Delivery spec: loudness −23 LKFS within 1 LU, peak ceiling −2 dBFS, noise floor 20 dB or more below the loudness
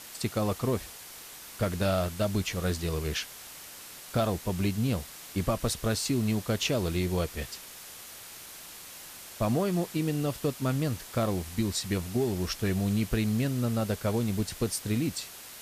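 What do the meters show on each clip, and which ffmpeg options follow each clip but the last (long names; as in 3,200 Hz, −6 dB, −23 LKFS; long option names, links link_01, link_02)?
background noise floor −46 dBFS; target noise floor −50 dBFS; integrated loudness −30.0 LKFS; sample peak −14.0 dBFS; target loudness −23.0 LKFS
→ -af "afftdn=noise_reduction=6:noise_floor=-46"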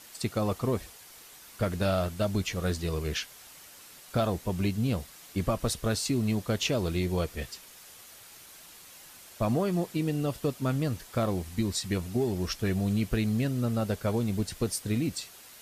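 background noise floor −51 dBFS; integrated loudness −30.0 LKFS; sample peak −14.5 dBFS; target loudness −23.0 LKFS
→ -af "volume=7dB"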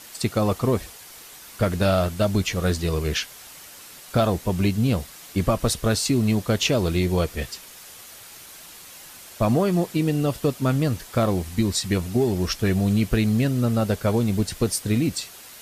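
integrated loudness −23.0 LKFS; sample peak −7.5 dBFS; background noise floor −44 dBFS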